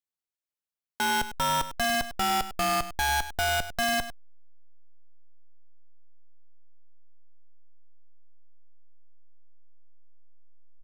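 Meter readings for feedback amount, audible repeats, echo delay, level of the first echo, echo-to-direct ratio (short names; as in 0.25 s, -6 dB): no steady repeat, 1, 0.1 s, -13.0 dB, -13.0 dB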